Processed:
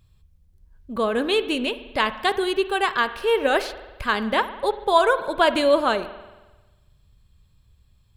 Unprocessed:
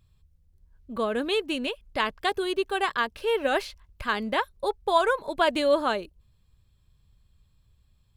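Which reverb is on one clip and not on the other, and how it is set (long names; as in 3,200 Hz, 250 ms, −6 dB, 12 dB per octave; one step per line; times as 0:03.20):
spring reverb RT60 1.2 s, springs 45 ms, chirp 30 ms, DRR 12 dB
level +4.5 dB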